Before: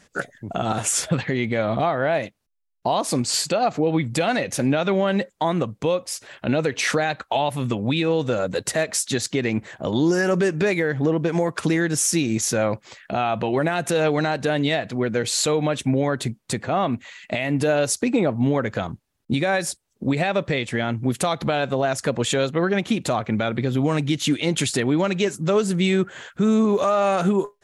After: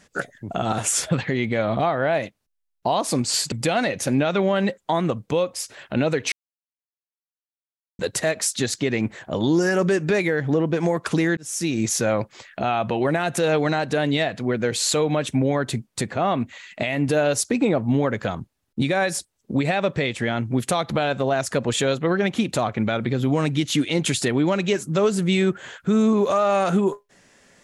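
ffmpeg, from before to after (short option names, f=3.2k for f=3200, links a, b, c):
-filter_complex "[0:a]asplit=5[a][b][c][d][e];[a]atrim=end=3.522[f];[b]atrim=start=4.038:end=6.84,asetpts=PTS-STARTPTS,afade=t=out:st=2.798:d=0.004:c=hsin[g];[c]atrim=start=6.84:end=8.51,asetpts=PTS-STARTPTS,volume=0[h];[d]atrim=start=8.51:end=11.89,asetpts=PTS-STARTPTS,afade=t=in:d=0.004:c=hsin,afade=t=out:st=3.376:d=0.004:c=hsin[i];[e]atrim=start=11.89,asetpts=PTS-STARTPTS,afade=t=in:d=0.41[j];[g][h][i][j]concat=n=4:v=0:a=1[k];[f][k]acrossfade=d=0.004:c1=hsin:c2=hsin"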